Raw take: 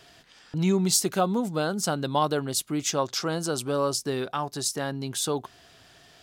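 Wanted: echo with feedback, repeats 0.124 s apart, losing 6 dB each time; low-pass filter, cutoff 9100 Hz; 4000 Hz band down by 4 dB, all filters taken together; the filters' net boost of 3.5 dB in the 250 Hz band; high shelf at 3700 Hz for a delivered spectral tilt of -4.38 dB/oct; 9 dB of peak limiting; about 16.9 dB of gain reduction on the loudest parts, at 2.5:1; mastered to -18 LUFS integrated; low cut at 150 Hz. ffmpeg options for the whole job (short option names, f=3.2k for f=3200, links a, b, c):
-af "highpass=150,lowpass=9.1k,equalizer=f=250:t=o:g=6,highshelf=f=3.7k:g=3.5,equalizer=f=4k:t=o:g=-8,acompressor=threshold=-45dB:ratio=2.5,alimiter=level_in=10.5dB:limit=-24dB:level=0:latency=1,volume=-10.5dB,aecho=1:1:124|248|372|496|620|744:0.501|0.251|0.125|0.0626|0.0313|0.0157,volume=24.5dB"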